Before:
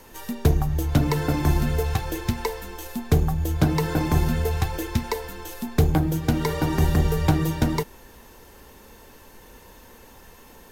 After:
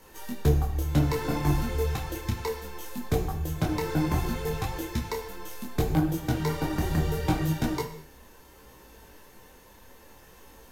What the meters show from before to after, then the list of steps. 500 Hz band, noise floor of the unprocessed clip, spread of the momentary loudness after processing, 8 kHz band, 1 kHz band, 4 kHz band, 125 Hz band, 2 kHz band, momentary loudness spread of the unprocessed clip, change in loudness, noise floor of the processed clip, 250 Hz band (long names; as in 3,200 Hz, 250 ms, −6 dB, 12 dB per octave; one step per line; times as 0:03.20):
−3.5 dB, −49 dBFS, 10 LU, −4.0 dB, −4.0 dB, −4.0 dB, −5.5 dB, −4.5 dB, 10 LU, −5.0 dB, −53 dBFS, −4.5 dB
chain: reverb whose tail is shaped and stops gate 260 ms falling, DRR 5.5 dB
micro pitch shift up and down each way 23 cents
level −1.5 dB